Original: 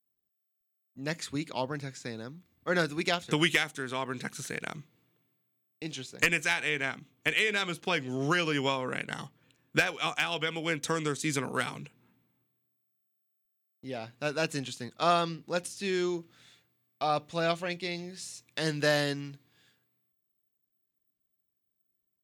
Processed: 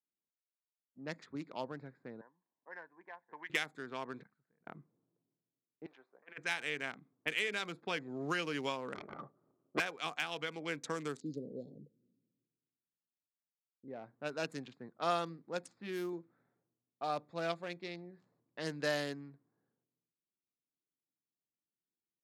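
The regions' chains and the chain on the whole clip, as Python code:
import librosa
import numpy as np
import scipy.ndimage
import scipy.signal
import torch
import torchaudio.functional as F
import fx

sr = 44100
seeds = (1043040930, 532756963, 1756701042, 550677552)

y = fx.chain(x, sr, fx.double_bandpass(hz=1300.0, octaves=0.82),
    fx.band_squash(depth_pct=40), at=(2.21, 3.5))
y = fx.chain(y, sr, fx.law_mismatch(coded='mu'),
    fx.level_steps(step_db=16),
    fx.tone_stack(knobs='5-5-5'), at=(4.23, 4.67))
y = fx.chain(y, sr, fx.highpass(hz=960.0, slope=12),
    fx.high_shelf(hz=2100.0, db=-9.0),
    fx.over_compress(threshold_db=-36.0, ratio=-0.5), at=(5.86, 6.38))
y = fx.chain(y, sr, fx.lower_of_two(delay_ms=0.9),
    fx.high_shelf(hz=4000.0, db=-8.5),
    fx.small_body(hz=(400.0, 570.0, 1200.0), ring_ms=25, db=13), at=(8.94, 9.8))
y = fx.chain(y, sr, fx.cheby1_bandstop(low_hz=550.0, high_hz=4200.0, order=4),
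    fx.resample_bad(factor=4, down='filtered', up='hold'), at=(11.2, 13.88))
y = fx.chain(y, sr, fx.resample_bad(factor=3, down='none', up='hold'),
    fx.notch(hz=400.0, q=8.2), at=(15.66, 16.13))
y = fx.wiener(y, sr, points=15)
y = scipy.signal.sosfilt(scipy.signal.butter(2, 170.0, 'highpass', fs=sr, output='sos'), y)
y = fx.env_lowpass(y, sr, base_hz=730.0, full_db=-28.0)
y = F.gain(torch.from_numpy(y), -7.5).numpy()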